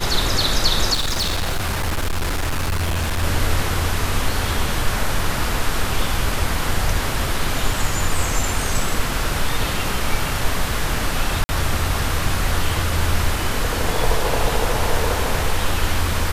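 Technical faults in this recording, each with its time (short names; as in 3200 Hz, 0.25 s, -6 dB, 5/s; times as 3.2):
0.93–3.24 clipped -17.5 dBFS
11.44–11.49 gap 50 ms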